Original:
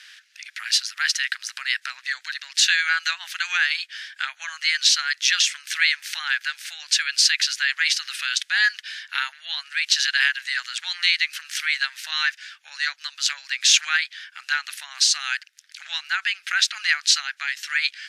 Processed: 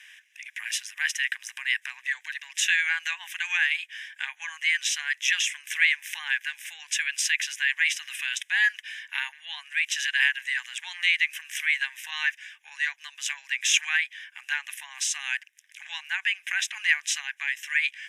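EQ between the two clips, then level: static phaser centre 900 Hz, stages 8; 0.0 dB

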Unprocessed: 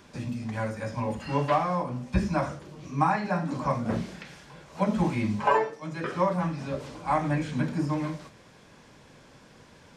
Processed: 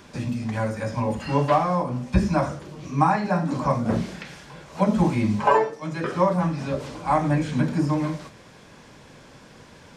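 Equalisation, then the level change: dynamic bell 2.2 kHz, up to -4 dB, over -40 dBFS, Q 0.76; +5.5 dB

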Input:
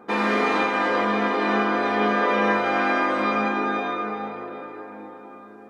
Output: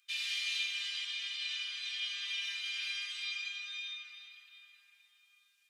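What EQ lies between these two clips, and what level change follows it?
Chebyshev high-pass 2.9 kHz, order 4; +2.5 dB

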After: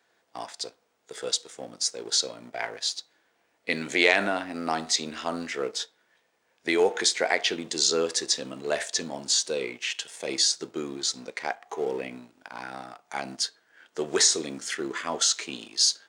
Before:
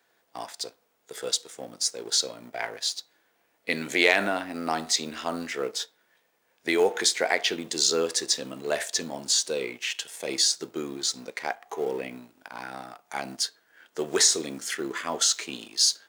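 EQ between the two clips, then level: Savitzky-Golay filter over 9 samples; 0.0 dB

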